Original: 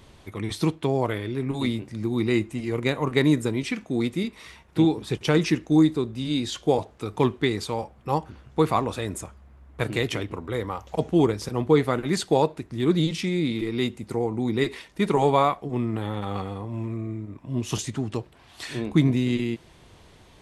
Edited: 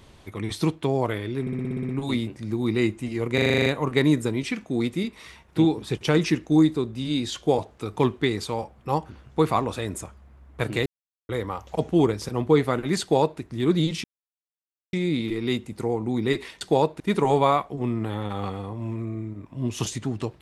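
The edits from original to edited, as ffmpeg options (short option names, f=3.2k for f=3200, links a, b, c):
-filter_complex "[0:a]asplit=22[a][b][c][d][e][f][g][h][i][j][k][l][m][n][o][p][q][r][s][t][u][v];[a]atrim=end=1.472[w];[b]atrim=start=1.408:end=1.472[x];[c]atrim=start=1.408:end=1.472[y];[d]atrim=start=1.408:end=1.472[z];[e]atrim=start=1.408:end=1.472[aa];[f]atrim=start=1.408:end=1.472[ab];[g]atrim=start=1.408:end=1.472[ac];[h]atrim=start=1.408:end=1.472[ad];[i]atrim=start=1.408:end=2.902[ae];[j]atrim=start=2.858:end=2.902[af];[k]atrim=start=2.858:end=2.902[ag];[l]atrim=start=2.858:end=2.902[ah];[m]atrim=start=2.858:end=2.902[ai];[n]atrim=start=2.858:end=2.902[aj];[o]atrim=start=2.858:end=2.902[ak];[p]atrim=start=2.858:end=2.902[al];[q]atrim=start=2.858:end=10.06,asetpts=PTS-STARTPTS,afade=t=out:st=7.198:d=0.004:c=hsin[am];[r]atrim=start=10.06:end=10.49,asetpts=PTS-STARTPTS,volume=0[an];[s]atrim=start=10.49:end=13.24,asetpts=PTS-STARTPTS,afade=t=in:d=0.004:c=hsin,afade=t=out:st=2.746:d=0.004:c=hsin,apad=pad_dur=0.89[ao];[t]atrim=start=13.24:end=14.922,asetpts=PTS-STARTPTS,afade=t=in:d=0.004:c=hsin[ap];[u]atrim=start=12.208:end=12.602[aq];[v]atrim=start=14.918[ar];[w][x]acrossfade=d=0.004:c1=hsin:c2=hsin[as];[as][y]acrossfade=d=0.004:c1=hsin:c2=hsin[at];[at][z]acrossfade=d=0.004:c1=hsin:c2=hsin[au];[au][aa]acrossfade=d=0.004:c1=hsin:c2=hsin[av];[av][ab]acrossfade=d=0.004:c1=hsin:c2=hsin[aw];[aw][ac]acrossfade=d=0.004:c1=hsin:c2=hsin[ax];[ax][ad]acrossfade=d=0.004:c1=hsin:c2=hsin[ay];[ay][ae]acrossfade=d=0.004:c1=hsin:c2=hsin[az];[az][af]acrossfade=d=0.004:c1=hsin:c2=hsin[ba];[ba][ag]acrossfade=d=0.004:c1=hsin:c2=hsin[bb];[bb][ah]acrossfade=d=0.004:c1=hsin:c2=hsin[bc];[bc][ai]acrossfade=d=0.004:c1=hsin:c2=hsin[bd];[bd][aj]acrossfade=d=0.004:c1=hsin:c2=hsin[be];[be][ak]acrossfade=d=0.004:c1=hsin:c2=hsin[bf];[bf][al]acrossfade=d=0.004:c1=hsin:c2=hsin[bg];[am][an][ao][ap]concat=n=4:v=0:a=1[bh];[bg][bh]acrossfade=d=0.004:c1=hsin:c2=hsin[bi];[bi][aq]acrossfade=d=0.004:c1=hsin:c2=hsin[bj];[bj][ar]acrossfade=d=0.004:c1=hsin:c2=hsin"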